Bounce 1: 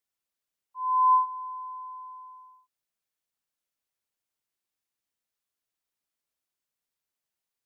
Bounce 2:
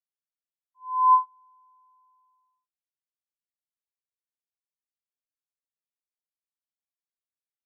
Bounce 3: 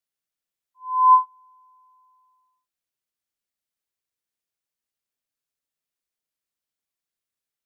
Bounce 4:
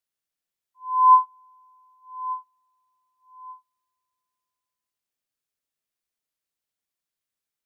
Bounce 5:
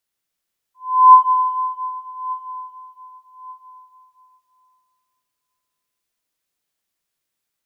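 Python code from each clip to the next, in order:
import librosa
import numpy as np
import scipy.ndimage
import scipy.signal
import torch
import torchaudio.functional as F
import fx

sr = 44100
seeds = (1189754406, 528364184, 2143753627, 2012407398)

y1 = fx.upward_expand(x, sr, threshold_db=-35.0, expansion=2.5)
y1 = F.gain(torch.from_numpy(y1), 4.0).numpy()
y2 = fx.peak_eq(y1, sr, hz=920.0, db=-3.0, octaves=0.77)
y2 = F.gain(torch.from_numpy(y2), 6.5).numpy()
y3 = fx.echo_feedback(y2, sr, ms=1185, feedback_pct=25, wet_db=-16)
y4 = fx.rev_plate(y3, sr, seeds[0], rt60_s=2.7, hf_ratio=1.0, predelay_ms=0, drr_db=2.5)
y4 = F.gain(torch.from_numpy(y4), 6.5).numpy()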